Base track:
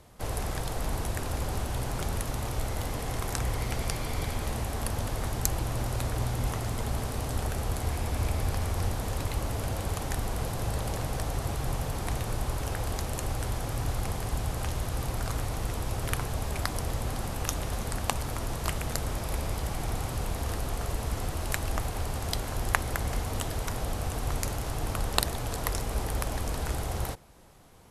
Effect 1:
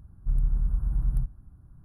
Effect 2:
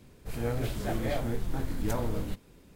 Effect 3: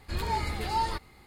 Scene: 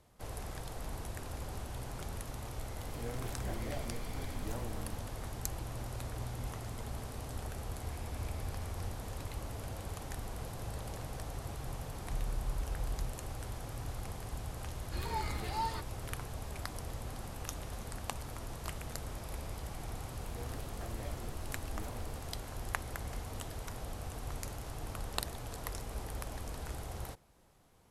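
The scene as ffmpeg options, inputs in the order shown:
ffmpeg -i bed.wav -i cue0.wav -i cue1.wav -i cue2.wav -filter_complex "[2:a]asplit=2[link_01][link_02];[0:a]volume=-10.5dB[link_03];[link_01]atrim=end=2.75,asetpts=PTS-STARTPTS,volume=-11.5dB,afade=type=in:duration=0.004:curve=hsin,afade=type=out:start_time=2.746:duration=0.004:curve=hsin,adelay=2610[link_04];[1:a]atrim=end=1.84,asetpts=PTS-STARTPTS,volume=-12.5dB,afade=type=in:duration=0.004:curve=hsin,afade=type=out:start_time=1.836:duration=0.004:curve=hsin,adelay=11850[link_05];[3:a]atrim=end=1.26,asetpts=PTS-STARTPTS,volume=-7.5dB,afade=type=in:duration=0.004:curve=hsin,afade=type=out:start_time=1.256:duration=0.004:curve=hsin,adelay=14830[link_06];[link_02]atrim=end=2.75,asetpts=PTS-STARTPTS,volume=-16.5dB,afade=type=in:duration=0.004:curve=hsin,afade=type=out:start_time=2.746:duration=0.004:curve=hsin,adelay=19940[link_07];[link_03][link_04][link_05][link_06][link_07]amix=inputs=5:normalize=0" out.wav

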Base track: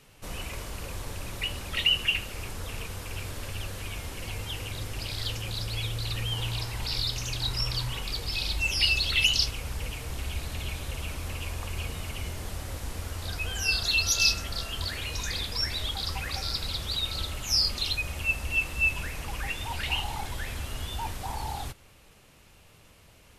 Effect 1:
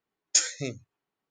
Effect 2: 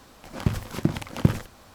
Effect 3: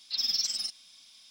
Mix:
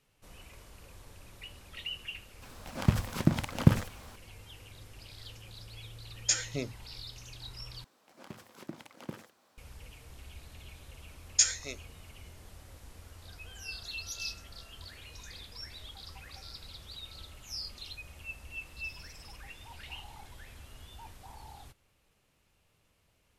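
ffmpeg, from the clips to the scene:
ffmpeg -i bed.wav -i cue0.wav -i cue1.wav -i cue2.wav -filter_complex "[2:a]asplit=2[link_01][link_02];[1:a]asplit=2[link_03][link_04];[0:a]volume=-15.5dB[link_05];[link_01]equalizer=frequency=360:width=2.7:gain=-4.5[link_06];[link_03]highshelf=frequency=5600:gain=-6.5[link_07];[link_02]highpass=250[link_08];[link_04]highpass=frequency=1100:poles=1[link_09];[3:a]acompressor=threshold=-35dB:ratio=6:attack=3.2:release=140:knee=1:detection=peak[link_10];[link_05]asplit=2[link_11][link_12];[link_11]atrim=end=7.844[link_13];[link_08]atrim=end=1.74,asetpts=PTS-STARTPTS,volume=-15.5dB[link_14];[link_12]atrim=start=9.576[link_15];[link_06]atrim=end=1.74,asetpts=PTS-STARTPTS,volume=-1dB,afade=type=in:duration=0.004:curve=hsin,afade=type=out:start_time=1.736:duration=0.004:curve=hsin,adelay=2420[link_16];[link_07]atrim=end=1.3,asetpts=PTS-STARTPTS,volume=-2dB,afade=type=in:duration=0.004:curve=hsin,afade=type=out:start_time=1.296:duration=0.004:curve=hsin,adelay=5940[link_17];[link_09]atrim=end=1.3,asetpts=PTS-STARTPTS,volume=-1.5dB,afade=type=in:duration=0.004:curve=hsin,afade=type=out:start_time=1.296:duration=0.004:curve=hsin,adelay=11040[link_18];[link_10]atrim=end=1.3,asetpts=PTS-STARTPTS,volume=-16dB,afade=type=in:duration=0.004:curve=hsin,afade=type=out:start_time=1.296:duration=0.004:curve=hsin,adelay=18660[link_19];[link_13][link_14]acrossfade=duration=0.004:curve1=hsin:curve2=hsin[link_20];[link_20][link_15]acrossfade=duration=0.004:curve1=hsin:curve2=hsin[link_21];[link_21][link_16][link_17][link_18][link_19]amix=inputs=5:normalize=0" out.wav

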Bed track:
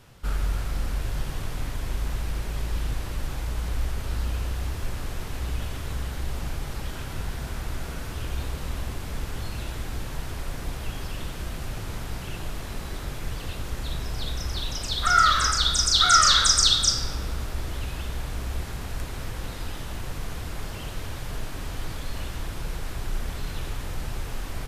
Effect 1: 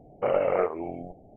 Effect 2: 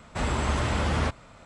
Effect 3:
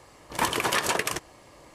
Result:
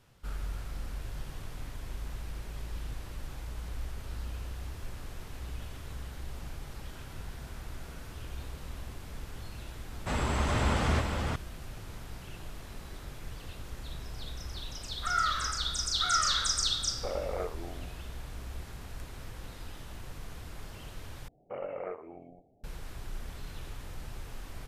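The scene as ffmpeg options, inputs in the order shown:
ffmpeg -i bed.wav -i cue0.wav -i cue1.wav -filter_complex "[1:a]asplit=2[link_01][link_02];[0:a]volume=-10.5dB[link_03];[2:a]aecho=1:1:422:0.668[link_04];[link_02]aecho=1:1:120|240:0.133|0.0333[link_05];[link_03]asplit=2[link_06][link_07];[link_06]atrim=end=21.284[link_08];[link_05]atrim=end=1.36,asetpts=PTS-STARTPTS,volume=-14dB[link_09];[link_07]atrim=start=22.636[link_10];[link_04]atrim=end=1.45,asetpts=PTS-STARTPTS,volume=-3.5dB,afade=type=in:duration=0.004:curve=hsin,afade=type=out:start_time=1.446:duration=0.004:curve=hsin,adelay=9910[link_11];[link_01]atrim=end=1.36,asetpts=PTS-STARTPTS,volume=-11dB,afade=type=in:duration=0.004:curve=hsin,afade=type=out:start_time=1.356:duration=0.004:curve=hsin,adelay=16810[link_12];[link_08][link_09]acrossfade=duration=0.004:curve1=hsin:curve2=hsin[link_13];[link_13][link_10]acrossfade=duration=0.004:curve1=hsin:curve2=hsin[link_14];[link_14][link_11][link_12]amix=inputs=3:normalize=0" out.wav

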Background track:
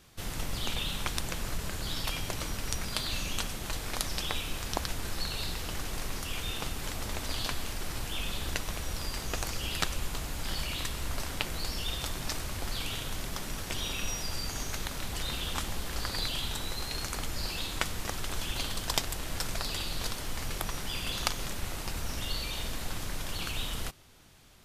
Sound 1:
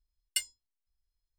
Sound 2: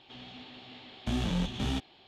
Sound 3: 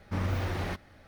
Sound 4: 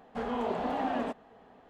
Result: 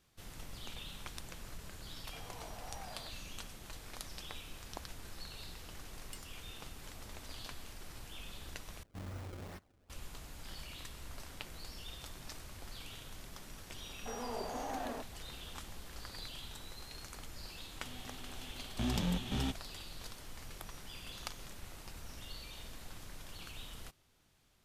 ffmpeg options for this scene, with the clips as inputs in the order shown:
ffmpeg -i bed.wav -i cue0.wav -i cue1.wav -i cue2.wav -i cue3.wav -filter_complex "[4:a]asplit=2[link_01][link_02];[0:a]volume=-13.5dB[link_03];[link_01]highpass=frequency=540:width=0.5412,highpass=frequency=540:width=1.3066[link_04];[1:a]acompressor=threshold=-40dB:ratio=6:attack=3.2:release=140:knee=1:detection=peak[link_05];[3:a]acrusher=samples=28:mix=1:aa=0.000001:lfo=1:lforange=44.8:lforate=2.4[link_06];[link_02]highpass=250[link_07];[link_03]asplit=2[link_08][link_09];[link_08]atrim=end=8.834[link_10];[link_06]atrim=end=1.07,asetpts=PTS-STARTPTS,volume=-14.5dB[link_11];[link_09]atrim=start=9.896[link_12];[link_04]atrim=end=1.69,asetpts=PTS-STARTPTS,volume=-17dB,afade=type=in:duration=0.004:curve=hsin,afade=type=out:start_time=1.686:duration=0.004:curve=hsin,adelay=1970[link_13];[link_05]atrim=end=1.38,asetpts=PTS-STARTPTS,volume=-7dB,afade=type=in:duration=0.004:curve=hsin,afade=type=out:start_time=1.376:duration=0.004:curve=hsin,adelay=254457S[link_14];[link_07]atrim=end=1.69,asetpts=PTS-STARTPTS,volume=-8.5dB,afade=type=in:duration=0.004:curve=hsin,afade=type=out:start_time=1.686:duration=0.004:curve=hsin,adelay=13900[link_15];[2:a]atrim=end=2.07,asetpts=PTS-STARTPTS,volume=-4dB,afade=type=in:duration=0.004:curve=hsin,afade=type=out:start_time=2.066:duration=0.004:curve=hsin,adelay=17720[link_16];[link_10][link_11]acrossfade=duration=0.004:curve1=hsin:curve2=hsin[link_17];[link_17][link_12]acrossfade=duration=0.004:curve1=hsin:curve2=hsin[link_18];[link_18][link_13][link_14][link_15][link_16]amix=inputs=5:normalize=0" out.wav

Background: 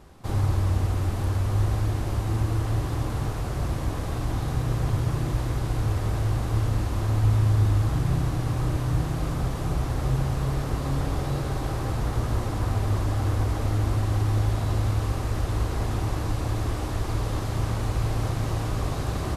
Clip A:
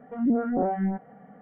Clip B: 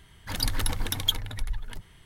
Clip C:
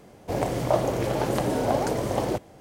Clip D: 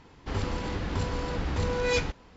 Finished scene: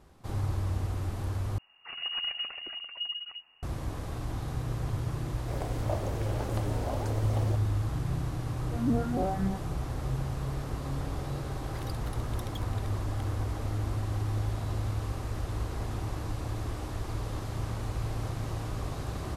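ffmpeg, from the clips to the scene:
ffmpeg -i bed.wav -i cue0.wav -i cue1.wav -i cue2.wav -filter_complex "[2:a]asplit=2[link_01][link_02];[0:a]volume=-7.5dB[link_03];[link_01]lowpass=frequency=2500:width_type=q:width=0.5098,lowpass=frequency=2500:width_type=q:width=0.6013,lowpass=frequency=2500:width_type=q:width=0.9,lowpass=frequency=2500:width_type=q:width=2.563,afreqshift=-2900[link_04];[link_02]acompressor=threshold=-34dB:ratio=6:attack=3.2:release=140:knee=1:detection=peak[link_05];[link_03]asplit=2[link_06][link_07];[link_06]atrim=end=1.584[link_08];[link_04]atrim=end=2.05,asetpts=PTS-STARTPTS,volume=-8.5dB[link_09];[link_07]atrim=start=3.626[link_10];[3:a]atrim=end=2.6,asetpts=PTS-STARTPTS,volume=-12dB,afade=type=in:duration=0.004:curve=hsin,afade=type=out:start_time=2.596:duration=0.004:curve=hsin,adelay=5190[link_11];[1:a]atrim=end=1.41,asetpts=PTS-STARTPTS,volume=-5dB,afade=type=in:duration=0.004:curve=hsin,afade=type=out:start_time=1.406:duration=0.004:curve=hsin,adelay=8600[link_12];[link_05]atrim=end=2.05,asetpts=PTS-STARTPTS,volume=-8dB,afade=type=in:duration=0.004:curve=hsin,afade=type=out:start_time=2.046:duration=0.004:curve=hsin,adelay=11470[link_13];[link_08][link_09]acrossfade=duration=0.004:curve1=hsin:curve2=hsin[link_14];[link_14][link_10]acrossfade=duration=0.004:curve1=hsin:curve2=hsin[link_15];[link_15][link_11][link_12][link_13]amix=inputs=4:normalize=0" out.wav

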